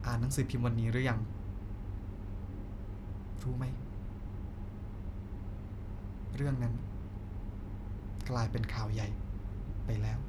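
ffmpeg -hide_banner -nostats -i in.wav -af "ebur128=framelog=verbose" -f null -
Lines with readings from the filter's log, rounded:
Integrated loudness:
  I:         -38.4 LUFS
  Threshold: -48.4 LUFS
Loudness range:
  LRA:         5.1 LU
  Threshold: -59.8 LUFS
  LRA low:   -42.4 LUFS
  LRA high:  -37.4 LUFS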